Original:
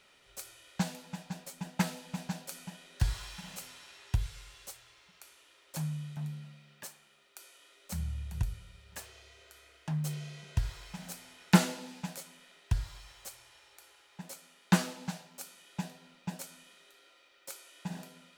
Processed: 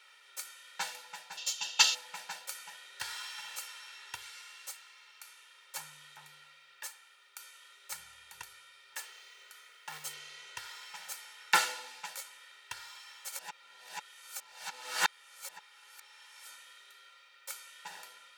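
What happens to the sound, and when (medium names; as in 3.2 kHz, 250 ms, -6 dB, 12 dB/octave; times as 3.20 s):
1.37–1.94 s: time-frequency box 2.6–7.4 kHz +15 dB
9.07–10.05 s: short-mantissa float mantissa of 2-bit
13.32–16.46 s: reverse
whole clip: high-pass 1.4 kHz 12 dB/octave; treble shelf 2.1 kHz -8.5 dB; comb 2.2 ms, depth 71%; trim +8.5 dB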